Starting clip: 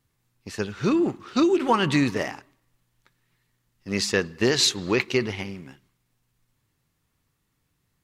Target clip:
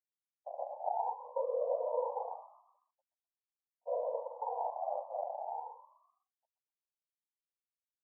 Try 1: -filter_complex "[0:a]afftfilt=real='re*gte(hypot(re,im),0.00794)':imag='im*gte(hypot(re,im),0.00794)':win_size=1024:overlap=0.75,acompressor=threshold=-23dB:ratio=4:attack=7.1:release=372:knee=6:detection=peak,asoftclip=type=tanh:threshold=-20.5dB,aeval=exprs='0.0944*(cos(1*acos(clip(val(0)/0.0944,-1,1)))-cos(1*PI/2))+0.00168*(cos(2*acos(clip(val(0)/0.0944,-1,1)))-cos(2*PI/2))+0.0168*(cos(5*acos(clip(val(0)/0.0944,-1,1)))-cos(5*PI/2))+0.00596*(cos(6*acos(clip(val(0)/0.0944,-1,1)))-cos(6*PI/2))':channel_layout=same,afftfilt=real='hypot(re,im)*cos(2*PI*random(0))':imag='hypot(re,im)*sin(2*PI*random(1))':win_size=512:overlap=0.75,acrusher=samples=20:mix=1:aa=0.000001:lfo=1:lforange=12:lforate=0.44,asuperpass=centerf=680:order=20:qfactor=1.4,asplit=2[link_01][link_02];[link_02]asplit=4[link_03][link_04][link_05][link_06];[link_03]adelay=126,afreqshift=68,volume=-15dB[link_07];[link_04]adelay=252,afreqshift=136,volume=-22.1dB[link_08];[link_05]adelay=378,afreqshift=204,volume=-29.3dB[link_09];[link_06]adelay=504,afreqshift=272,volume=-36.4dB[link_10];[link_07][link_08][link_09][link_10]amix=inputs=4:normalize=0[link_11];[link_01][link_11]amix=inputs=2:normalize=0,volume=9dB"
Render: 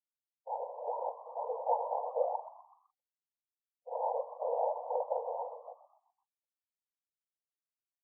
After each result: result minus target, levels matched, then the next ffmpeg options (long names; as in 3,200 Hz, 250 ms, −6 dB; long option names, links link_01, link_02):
soft clipping: distortion +18 dB; sample-and-hold swept by an LFO: distortion −15 dB
-filter_complex "[0:a]afftfilt=real='re*gte(hypot(re,im),0.00794)':imag='im*gte(hypot(re,im),0.00794)':win_size=1024:overlap=0.75,acompressor=threshold=-23dB:ratio=4:attack=7.1:release=372:knee=6:detection=peak,asoftclip=type=tanh:threshold=-9dB,aeval=exprs='0.0944*(cos(1*acos(clip(val(0)/0.0944,-1,1)))-cos(1*PI/2))+0.00168*(cos(2*acos(clip(val(0)/0.0944,-1,1)))-cos(2*PI/2))+0.0168*(cos(5*acos(clip(val(0)/0.0944,-1,1)))-cos(5*PI/2))+0.00596*(cos(6*acos(clip(val(0)/0.0944,-1,1)))-cos(6*PI/2))':channel_layout=same,afftfilt=real='hypot(re,im)*cos(2*PI*random(0))':imag='hypot(re,im)*sin(2*PI*random(1))':win_size=512:overlap=0.75,acrusher=samples=20:mix=1:aa=0.000001:lfo=1:lforange=12:lforate=0.44,asuperpass=centerf=680:order=20:qfactor=1.4,asplit=2[link_01][link_02];[link_02]asplit=4[link_03][link_04][link_05][link_06];[link_03]adelay=126,afreqshift=68,volume=-15dB[link_07];[link_04]adelay=252,afreqshift=136,volume=-22.1dB[link_08];[link_05]adelay=378,afreqshift=204,volume=-29.3dB[link_09];[link_06]adelay=504,afreqshift=272,volume=-36.4dB[link_10];[link_07][link_08][link_09][link_10]amix=inputs=4:normalize=0[link_11];[link_01][link_11]amix=inputs=2:normalize=0,volume=9dB"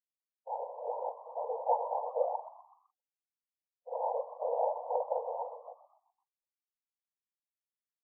sample-and-hold swept by an LFO: distortion −15 dB
-filter_complex "[0:a]afftfilt=real='re*gte(hypot(re,im),0.00794)':imag='im*gte(hypot(re,im),0.00794)':win_size=1024:overlap=0.75,acompressor=threshold=-23dB:ratio=4:attack=7.1:release=372:knee=6:detection=peak,asoftclip=type=tanh:threshold=-9dB,aeval=exprs='0.0944*(cos(1*acos(clip(val(0)/0.0944,-1,1)))-cos(1*PI/2))+0.00168*(cos(2*acos(clip(val(0)/0.0944,-1,1)))-cos(2*PI/2))+0.0168*(cos(5*acos(clip(val(0)/0.0944,-1,1)))-cos(5*PI/2))+0.00596*(cos(6*acos(clip(val(0)/0.0944,-1,1)))-cos(6*PI/2))':channel_layout=same,afftfilt=real='hypot(re,im)*cos(2*PI*random(0))':imag='hypot(re,im)*sin(2*PI*random(1))':win_size=512:overlap=0.75,acrusher=samples=74:mix=1:aa=0.000001:lfo=1:lforange=44.4:lforate=0.44,asuperpass=centerf=680:order=20:qfactor=1.4,asplit=2[link_01][link_02];[link_02]asplit=4[link_03][link_04][link_05][link_06];[link_03]adelay=126,afreqshift=68,volume=-15dB[link_07];[link_04]adelay=252,afreqshift=136,volume=-22.1dB[link_08];[link_05]adelay=378,afreqshift=204,volume=-29.3dB[link_09];[link_06]adelay=504,afreqshift=272,volume=-36.4dB[link_10];[link_07][link_08][link_09][link_10]amix=inputs=4:normalize=0[link_11];[link_01][link_11]amix=inputs=2:normalize=0,volume=9dB"